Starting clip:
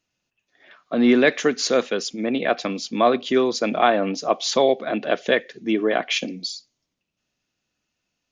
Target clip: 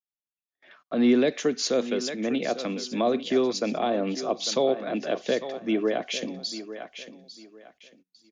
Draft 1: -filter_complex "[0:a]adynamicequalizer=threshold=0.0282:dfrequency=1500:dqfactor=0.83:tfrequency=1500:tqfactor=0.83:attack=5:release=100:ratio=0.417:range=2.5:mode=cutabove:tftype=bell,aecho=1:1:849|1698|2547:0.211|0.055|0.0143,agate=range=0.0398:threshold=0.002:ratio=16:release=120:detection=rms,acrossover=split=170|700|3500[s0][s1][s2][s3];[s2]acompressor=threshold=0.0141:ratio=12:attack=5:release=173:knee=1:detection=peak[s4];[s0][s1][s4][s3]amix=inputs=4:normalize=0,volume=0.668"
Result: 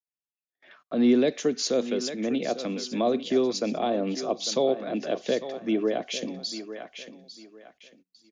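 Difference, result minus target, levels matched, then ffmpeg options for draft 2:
compression: peak gain reduction +6 dB
-filter_complex "[0:a]adynamicequalizer=threshold=0.0282:dfrequency=1500:dqfactor=0.83:tfrequency=1500:tqfactor=0.83:attack=5:release=100:ratio=0.417:range=2.5:mode=cutabove:tftype=bell,aecho=1:1:849|1698|2547:0.211|0.055|0.0143,agate=range=0.0398:threshold=0.002:ratio=16:release=120:detection=rms,acrossover=split=170|700|3500[s0][s1][s2][s3];[s2]acompressor=threshold=0.0299:ratio=12:attack=5:release=173:knee=1:detection=peak[s4];[s0][s1][s4][s3]amix=inputs=4:normalize=0,volume=0.668"

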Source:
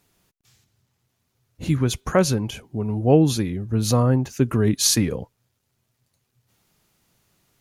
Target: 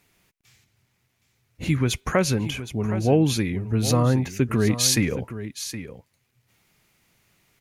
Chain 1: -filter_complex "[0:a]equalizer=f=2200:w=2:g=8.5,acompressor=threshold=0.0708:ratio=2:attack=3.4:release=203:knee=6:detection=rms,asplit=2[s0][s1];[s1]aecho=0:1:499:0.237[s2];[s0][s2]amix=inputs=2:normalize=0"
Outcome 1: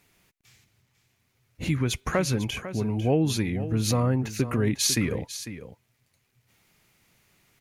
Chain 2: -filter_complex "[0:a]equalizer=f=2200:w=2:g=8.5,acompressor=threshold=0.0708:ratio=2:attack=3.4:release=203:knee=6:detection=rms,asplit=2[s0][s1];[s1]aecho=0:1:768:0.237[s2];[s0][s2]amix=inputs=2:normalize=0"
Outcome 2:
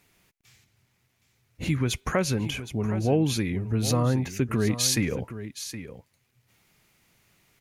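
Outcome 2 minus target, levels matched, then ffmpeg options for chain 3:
compression: peak gain reduction +4 dB
-filter_complex "[0:a]equalizer=f=2200:w=2:g=8.5,acompressor=threshold=0.188:ratio=2:attack=3.4:release=203:knee=6:detection=rms,asplit=2[s0][s1];[s1]aecho=0:1:768:0.237[s2];[s0][s2]amix=inputs=2:normalize=0"

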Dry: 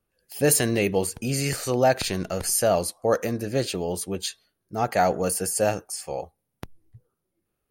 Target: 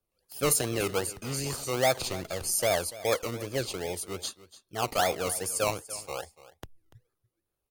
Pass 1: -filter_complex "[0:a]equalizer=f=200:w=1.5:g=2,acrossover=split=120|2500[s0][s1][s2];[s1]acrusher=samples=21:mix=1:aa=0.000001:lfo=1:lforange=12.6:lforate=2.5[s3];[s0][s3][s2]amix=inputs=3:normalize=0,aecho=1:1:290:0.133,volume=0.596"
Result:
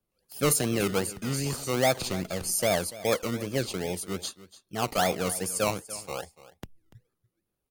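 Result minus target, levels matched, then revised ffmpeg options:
250 Hz band +5.0 dB
-filter_complex "[0:a]equalizer=f=200:w=1.5:g=-8.5,acrossover=split=120|2500[s0][s1][s2];[s1]acrusher=samples=21:mix=1:aa=0.000001:lfo=1:lforange=12.6:lforate=2.5[s3];[s0][s3][s2]amix=inputs=3:normalize=0,aecho=1:1:290:0.133,volume=0.596"

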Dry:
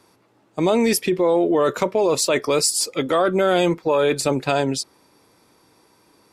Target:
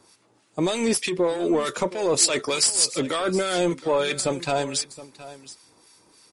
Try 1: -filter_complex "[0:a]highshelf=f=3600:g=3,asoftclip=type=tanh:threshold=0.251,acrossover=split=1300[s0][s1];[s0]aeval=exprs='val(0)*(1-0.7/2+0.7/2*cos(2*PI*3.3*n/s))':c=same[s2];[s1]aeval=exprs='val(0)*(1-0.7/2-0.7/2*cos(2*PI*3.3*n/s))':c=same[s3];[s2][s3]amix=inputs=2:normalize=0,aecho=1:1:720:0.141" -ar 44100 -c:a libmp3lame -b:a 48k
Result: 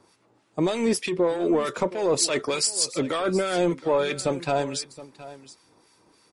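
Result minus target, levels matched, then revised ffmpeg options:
8 kHz band -3.0 dB
-filter_complex "[0:a]highshelf=f=3600:g=13.5,asoftclip=type=tanh:threshold=0.251,acrossover=split=1300[s0][s1];[s0]aeval=exprs='val(0)*(1-0.7/2+0.7/2*cos(2*PI*3.3*n/s))':c=same[s2];[s1]aeval=exprs='val(0)*(1-0.7/2-0.7/2*cos(2*PI*3.3*n/s))':c=same[s3];[s2][s3]amix=inputs=2:normalize=0,aecho=1:1:720:0.141" -ar 44100 -c:a libmp3lame -b:a 48k

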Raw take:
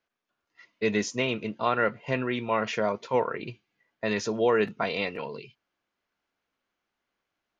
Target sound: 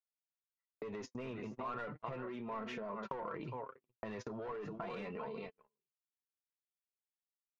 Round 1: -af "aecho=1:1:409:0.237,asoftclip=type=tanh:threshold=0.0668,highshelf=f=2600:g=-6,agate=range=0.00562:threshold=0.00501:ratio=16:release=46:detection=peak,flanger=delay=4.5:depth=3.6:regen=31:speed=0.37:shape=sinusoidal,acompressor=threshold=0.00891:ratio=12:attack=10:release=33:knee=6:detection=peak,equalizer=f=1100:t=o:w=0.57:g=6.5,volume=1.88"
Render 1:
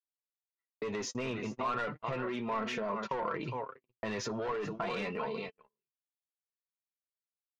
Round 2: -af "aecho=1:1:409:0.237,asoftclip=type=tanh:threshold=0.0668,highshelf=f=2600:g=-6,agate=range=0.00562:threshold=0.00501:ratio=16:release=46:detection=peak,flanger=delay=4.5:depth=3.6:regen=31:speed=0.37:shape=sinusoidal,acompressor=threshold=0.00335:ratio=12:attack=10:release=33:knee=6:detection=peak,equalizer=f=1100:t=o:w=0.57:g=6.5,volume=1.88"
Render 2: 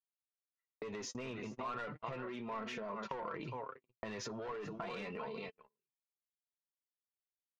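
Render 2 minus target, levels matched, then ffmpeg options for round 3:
4 kHz band +5.5 dB
-af "aecho=1:1:409:0.237,asoftclip=type=tanh:threshold=0.0668,highshelf=f=2600:g=-16.5,agate=range=0.00562:threshold=0.00501:ratio=16:release=46:detection=peak,flanger=delay=4.5:depth=3.6:regen=31:speed=0.37:shape=sinusoidal,acompressor=threshold=0.00335:ratio=12:attack=10:release=33:knee=6:detection=peak,equalizer=f=1100:t=o:w=0.57:g=6.5,volume=1.88"

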